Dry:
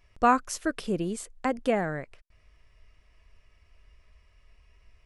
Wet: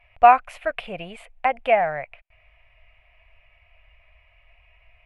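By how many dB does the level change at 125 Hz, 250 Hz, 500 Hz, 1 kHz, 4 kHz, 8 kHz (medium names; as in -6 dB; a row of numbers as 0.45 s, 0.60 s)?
-6.0 dB, -11.0 dB, +7.0 dB, +9.5 dB, +3.5 dB, under -15 dB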